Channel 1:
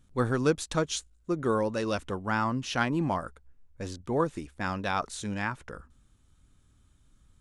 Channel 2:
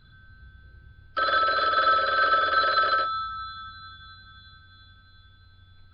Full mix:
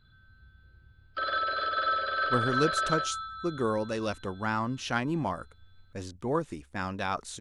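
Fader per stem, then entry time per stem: -2.0 dB, -7.0 dB; 2.15 s, 0.00 s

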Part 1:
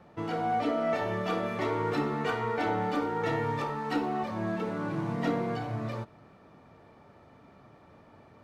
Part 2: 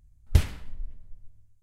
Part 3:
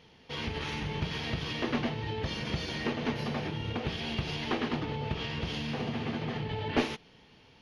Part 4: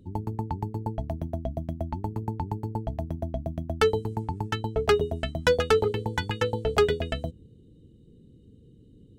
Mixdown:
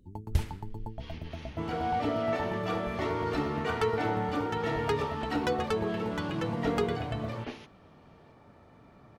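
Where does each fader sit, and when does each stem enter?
-1.5 dB, -7.5 dB, -13.0 dB, -9.5 dB; 1.40 s, 0.00 s, 0.70 s, 0.00 s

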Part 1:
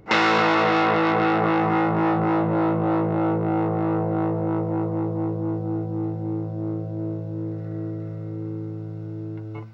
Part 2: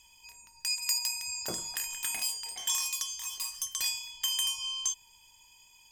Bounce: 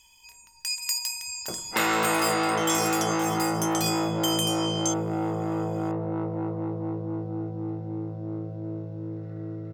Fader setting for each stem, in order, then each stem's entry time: -5.5 dB, +1.5 dB; 1.65 s, 0.00 s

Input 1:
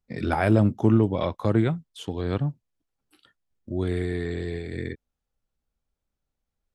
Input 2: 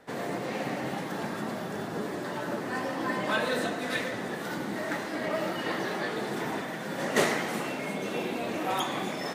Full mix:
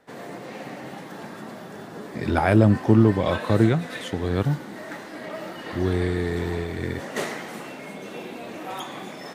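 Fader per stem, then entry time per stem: +3.0 dB, -4.0 dB; 2.05 s, 0.00 s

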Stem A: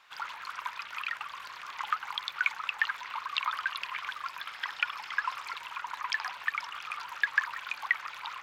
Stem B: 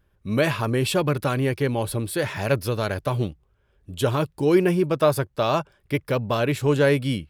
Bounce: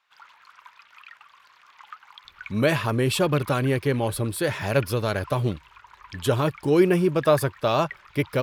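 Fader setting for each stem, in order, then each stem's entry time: -11.5 dB, 0.0 dB; 0.00 s, 2.25 s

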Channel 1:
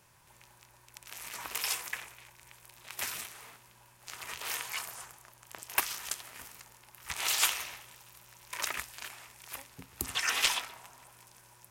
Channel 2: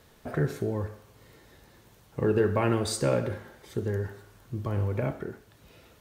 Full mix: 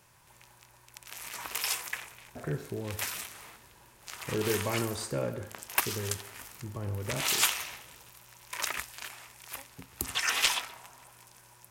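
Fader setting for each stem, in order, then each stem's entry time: +1.5 dB, -7.0 dB; 0.00 s, 2.10 s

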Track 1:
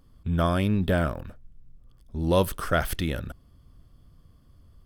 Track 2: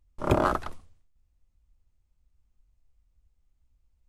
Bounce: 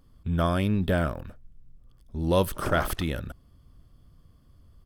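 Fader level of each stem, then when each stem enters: -1.0 dB, -9.0 dB; 0.00 s, 2.35 s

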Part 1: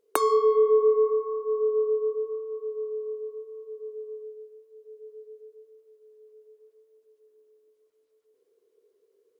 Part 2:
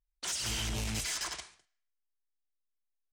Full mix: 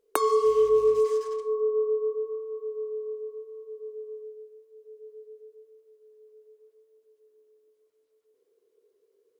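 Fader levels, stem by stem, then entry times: -1.0 dB, -15.5 dB; 0.00 s, 0.00 s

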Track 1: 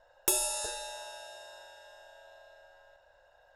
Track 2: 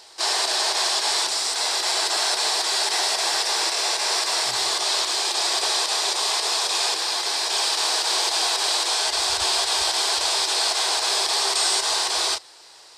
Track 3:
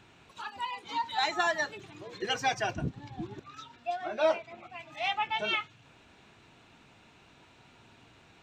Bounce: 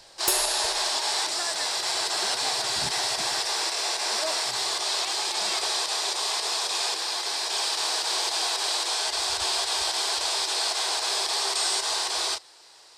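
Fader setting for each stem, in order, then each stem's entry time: +3.0 dB, -4.5 dB, -8.0 dB; 0.00 s, 0.00 s, 0.00 s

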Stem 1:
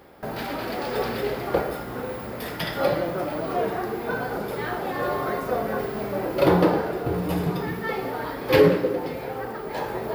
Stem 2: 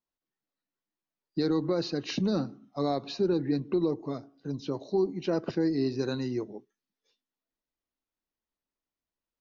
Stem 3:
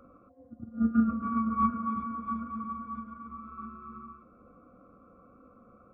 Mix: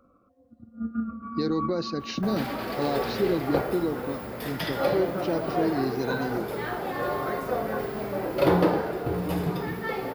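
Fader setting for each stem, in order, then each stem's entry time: -2.5 dB, 0.0 dB, -5.5 dB; 2.00 s, 0.00 s, 0.00 s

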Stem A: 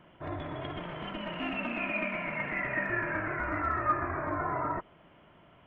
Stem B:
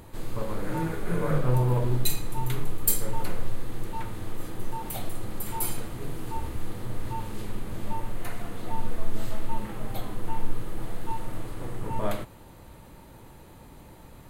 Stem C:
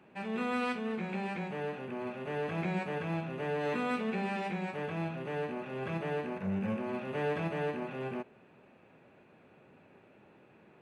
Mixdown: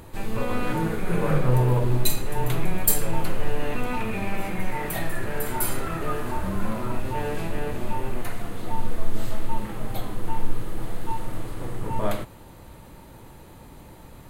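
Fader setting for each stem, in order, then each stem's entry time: -5.0 dB, +3.0 dB, +1.5 dB; 2.20 s, 0.00 s, 0.00 s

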